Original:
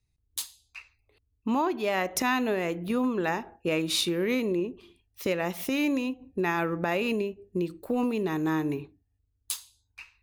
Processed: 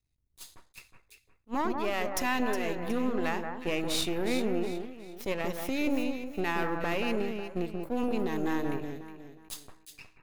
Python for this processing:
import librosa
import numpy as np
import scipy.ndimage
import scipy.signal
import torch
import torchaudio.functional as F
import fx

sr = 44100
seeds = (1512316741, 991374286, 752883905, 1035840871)

y = np.where(x < 0.0, 10.0 ** (-12.0 / 20.0) * x, x)
y = fx.echo_alternate(y, sr, ms=182, hz=1800.0, feedback_pct=56, wet_db=-5.0)
y = fx.attack_slew(y, sr, db_per_s=470.0)
y = F.gain(torch.from_numpy(y), -1.0).numpy()